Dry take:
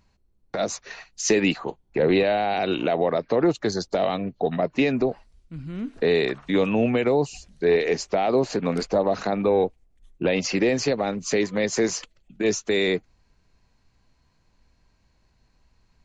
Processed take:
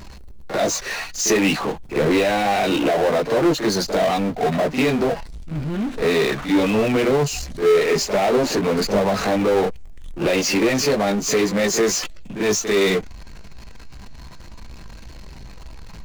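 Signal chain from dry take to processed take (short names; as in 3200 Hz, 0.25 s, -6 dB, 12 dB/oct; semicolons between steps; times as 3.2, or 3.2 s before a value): pre-echo 44 ms -17 dB; chorus voices 6, 0.26 Hz, delay 17 ms, depth 3.5 ms; power-law curve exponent 0.5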